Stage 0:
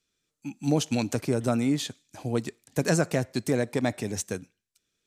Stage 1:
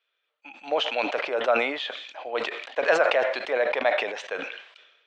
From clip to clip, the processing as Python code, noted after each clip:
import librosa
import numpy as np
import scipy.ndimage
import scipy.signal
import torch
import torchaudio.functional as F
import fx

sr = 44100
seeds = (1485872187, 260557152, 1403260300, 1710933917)

y = scipy.signal.sosfilt(scipy.signal.cheby1(3, 1.0, [550.0, 3200.0], 'bandpass', fs=sr, output='sos'), x)
y = fx.sustainer(y, sr, db_per_s=54.0)
y = F.gain(torch.from_numpy(y), 7.0).numpy()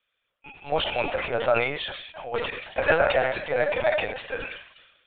y = x + 10.0 ** (-22.0 / 20.0) * np.pad(x, (int(98 * sr / 1000.0), 0))[:len(x)]
y = fx.lpc_vocoder(y, sr, seeds[0], excitation='pitch_kept', order=16)